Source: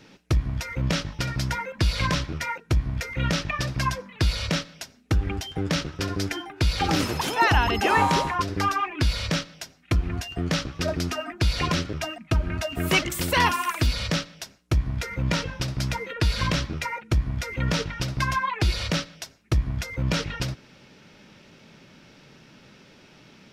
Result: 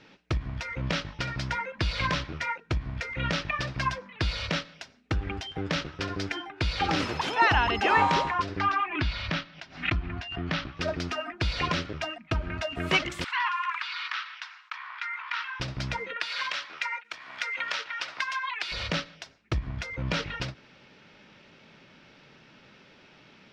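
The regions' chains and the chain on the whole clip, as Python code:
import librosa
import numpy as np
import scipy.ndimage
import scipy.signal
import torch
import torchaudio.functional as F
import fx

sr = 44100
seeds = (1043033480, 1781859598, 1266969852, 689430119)

y = fx.chain(x, sr, fx.lowpass(hz=4100.0, slope=12),
    fx.peak_eq(hz=490.0, db=-11.5, octaves=0.32),
    fx.pre_swell(db_per_s=130.0), at=(8.59, 10.77))
y = fx.chain(y, sr, fx.steep_highpass(hz=1000.0, slope=48),
    fx.spacing_loss(db_at_10k=29),
    fx.env_flatten(amount_pct=50), at=(13.24, 15.6))
y = fx.chain(y, sr, fx.highpass(hz=1100.0, slope=12),
    fx.band_squash(depth_pct=100), at=(16.16, 18.72))
y = scipy.signal.sosfilt(scipy.signal.butter(2, 3900.0, 'lowpass', fs=sr, output='sos'), y)
y = fx.low_shelf(y, sr, hz=460.0, db=-7.0)
y = fx.end_taper(y, sr, db_per_s=290.0)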